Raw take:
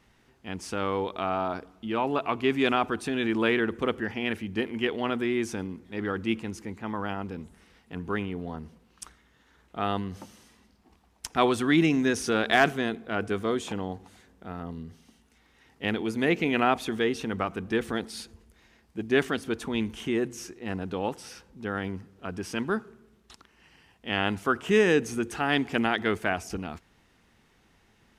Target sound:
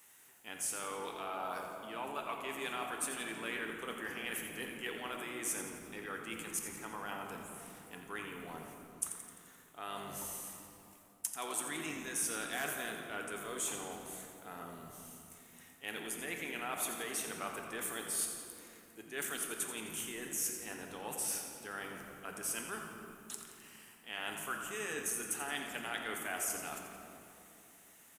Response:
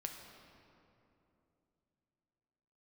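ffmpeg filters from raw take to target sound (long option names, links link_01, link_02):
-filter_complex "[0:a]aexciter=amount=9.8:drive=3.8:freq=7000,areverse,acompressor=threshold=-33dB:ratio=6,areverse,highpass=frequency=1100:poles=1,asplit=7[link_01][link_02][link_03][link_04][link_05][link_06][link_07];[link_02]adelay=86,afreqshift=-53,volume=-10dB[link_08];[link_03]adelay=172,afreqshift=-106,volume=-15.2dB[link_09];[link_04]adelay=258,afreqshift=-159,volume=-20.4dB[link_10];[link_05]adelay=344,afreqshift=-212,volume=-25.6dB[link_11];[link_06]adelay=430,afreqshift=-265,volume=-30.8dB[link_12];[link_07]adelay=516,afreqshift=-318,volume=-36dB[link_13];[link_01][link_08][link_09][link_10][link_11][link_12][link_13]amix=inputs=7:normalize=0[link_14];[1:a]atrim=start_sample=2205[link_15];[link_14][link_15]afir=irnorm=-1:irlink=0,volume=3dB"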